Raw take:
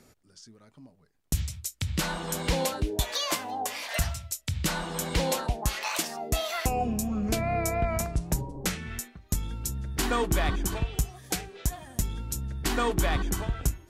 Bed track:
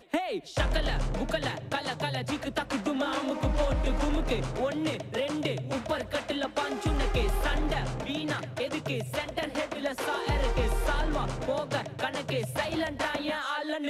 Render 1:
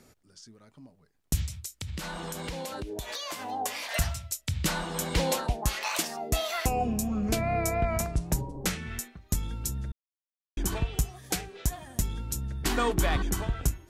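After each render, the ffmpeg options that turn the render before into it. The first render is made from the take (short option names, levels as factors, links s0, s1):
-filter_complex "[0:a]asettb=1/sr,asplit=3[s0][s1][s2];[s0]atrim=end=1.464[s3];[s1]atrim=start=1.46:end=3.46,asetpts=PTS-STARTPTS,afade=t=in:d=0.004:c=qsin,afade=t=out:st=1.996:d=0.004:c=qsin,acompressor=threshold=0.0251:ratio=10:attack=3.2:release=140:knee=1:detection=peak[s4];[s2]atrim=start=3.456[s5];[s3][s4]acrossfade=d=0.004:c1=hsin:c2=qsin[s6];[s6][s5]acrossfade=d=0.004:c1=qsin:c2=hsin,asplit=3[s7][s8][s9];[s7]atrim=end=9.92,asetpts=PTS-STARTPTS,afade=t=out:st=9.916:d=0.004:c=hsin[s10];[s8]atrim=start=9.92:end=10.57,asetpts=PTS-STARTPTS,volume=0[s11];[s9]atrim=start=10.57,asetpts=PTS-STARTPTS,afade=t=in:d=0.004:c=hsin[s12];[s10][s11][s12]concat=n=3:v=0:a=1"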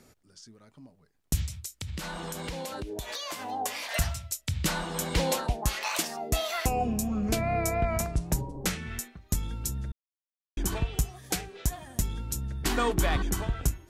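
-af anull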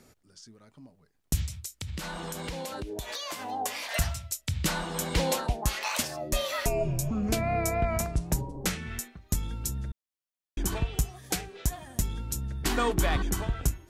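-filter_complex "[0:a]asettb=1/sr,asplit=3[s0][s1][s2];[s0]atrim=end=5.974[s3];[s1]atrim=start=5.97:end=7.11,asetpts=PTS-STARTPTS,afade=t=in:d=0.004:c=qsin,afade=t=out:st=1.136:d=0.004:c=qsin,afreqshift=-84[s4];[s2]atrim=start=7.106[s5];[s3][s4]acrossfade=d=0.004:c1=hsin:c2=qsin[s6];[s6][s5]acrossfade=d=0.004:c1=qsin:c2=hsin"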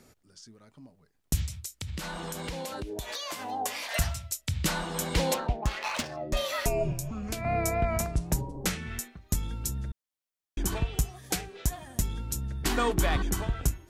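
-filter_complex "[0:a]asettb=1/sr,asplit=3[s0][s1][s2];[s0]atrim=end=5.344[s3];[s1]atrim=start=5.34:end=6.37,asetpts=PTS-STARTPTS,afade=t=in:d=0.004:c=qsin,afade=t=out:st=1.026:d=0.004:c=qsin,adynamicsmooth=sensitivity=4:basefreq=2400[s4];[s2]atrim=start=6.366[s5];[s3][s4]acrossfade=d=0.004:c1=hsin:c2=qsin[s6];[s6][s5]acrossfade=d=0.004:c1=qsin:c2=hsin,asettb=1/sr,asplit=3[s7][s8][s9];[s7]atrim=end=6.924[s10];[s8]atrim=start=6.92:end=7.45,asetpts=PTS-STARTPTS,afade=t=in:d=0.004:c=qsin,afade=t=out:st=0.526:d=0.004:c=qsin,acrossover=split=110|870[s11][s12][s13];[s11]acompressor=threshold=0.0126:ratio=4[s14];[s12]acompressor=threshold=0.0126:ratio=4[s15];[s13]acompressor=threshold=0.0178:ratio=4[s16];[s14][s15][s16]amix=inputs=3:normalize=0[s17];[s9]atrim=start=7.446[s18];[s10][s17]acrossfade=d=0.004:c1=hsin:c2=qsin[s19];[s19][s18]acrossfade=d=0.004:c1=qsin:c2=hsin"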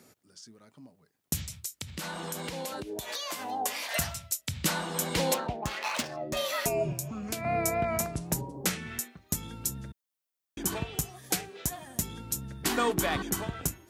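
-af "highpass=130,highshelf=f=11000:g=6.5"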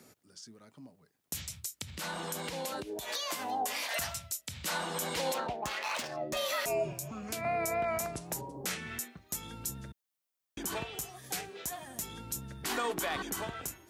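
-filter_complex "[0:a]acrossover=split=390[s0][s1];[s0]acompressor=threshold=0.00631:ratio=3[s2];[s2][s1]amix=inputs=2:normalize=0,alimiter=limit=0.0668:level=0:latency=1:release=42"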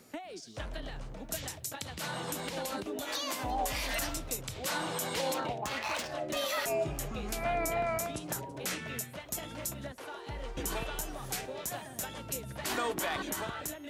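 -filter_complex "[1:a]volume=0.224[s0];[0:a][s0]amix=inputs=2:normalize=0"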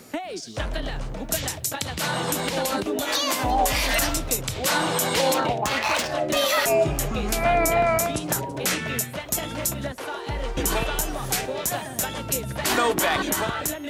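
-af "volume=3.76"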